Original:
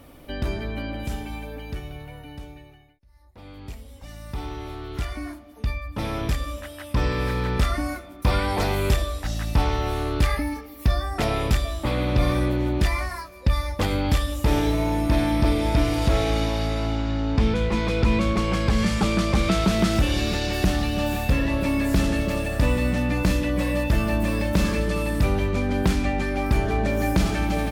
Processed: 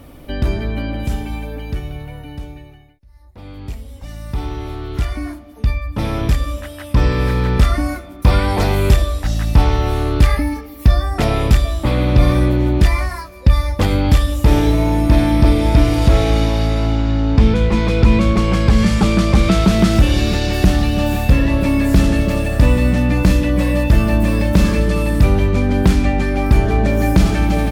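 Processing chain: low shelf 300 Hz +5.5 dB; gain +4.5 dB

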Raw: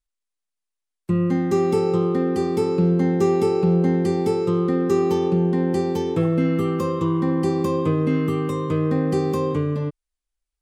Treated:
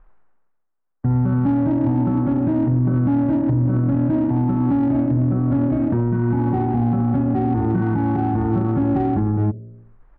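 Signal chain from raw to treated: LPF 2000 Hz 24 dB/oct; de-hum 52.38 Hz, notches 19; reverse; upward compressor, threshold -40 dBFS; reverse; limiter -19.5 dBFS, peak gain reduction 10 dB; pitch shift -6.5 st; in parallel at -3.5 dB: soft clip -34 dBFS, distortion -7 dB; on the sum: speed mistake 24 fps film run at 25 fps; gain +6.5 dB

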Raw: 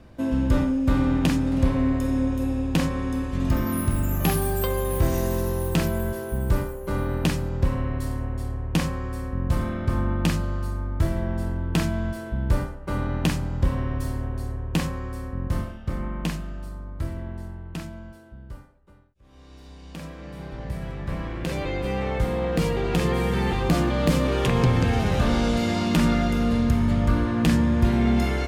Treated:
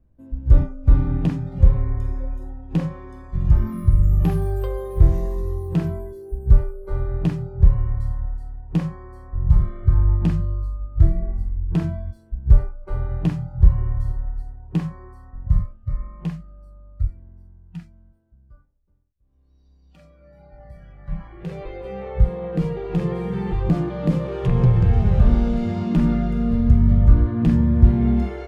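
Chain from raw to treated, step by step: spectral noise reduction 19 dB; tilt -4 dB/oct; gain -6.5 dB

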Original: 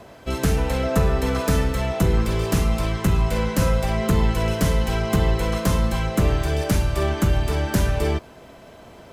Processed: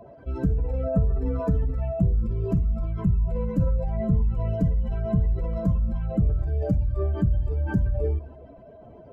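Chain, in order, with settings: spectral contrast raised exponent 2.3; reverb RT60 0.60 s, pre-delay 7 ms, DRR 16.5 dB; gain -2 dB

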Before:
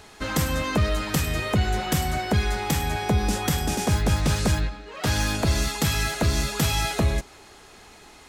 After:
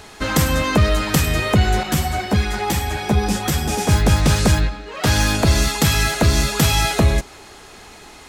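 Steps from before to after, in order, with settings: 1.83–3.89 ensemble effect; gain +7 dB

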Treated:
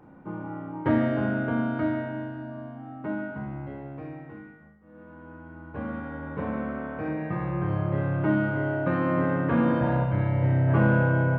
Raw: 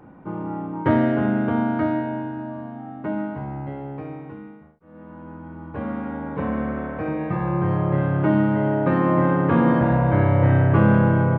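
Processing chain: 10.03–10.67 bell 610 Hz -> 1500 Hz -7 dB 2.8 oct; Schroeder reverb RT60 0.88 s, combs from 26 ms, DRR 4.5 dB; gain -5.5 dB

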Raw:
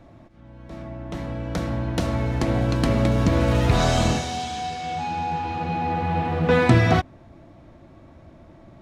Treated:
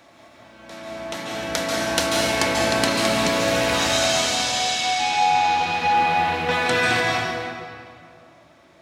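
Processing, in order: HPF 1200 Hz 6 dB/oct; high shelf 2500 Hz +8 dB; vocal rider within 4 dB 0.5 s; reverb RT60 2.4 s, pre-delay 0.134 s, DRR -3.5 dB; gain +2.5 dB

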